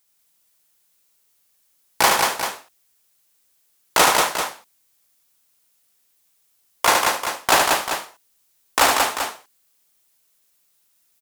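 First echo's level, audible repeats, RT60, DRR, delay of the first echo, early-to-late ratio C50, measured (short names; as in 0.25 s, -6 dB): -4.5 dB, 4, none, none, 74 ms, none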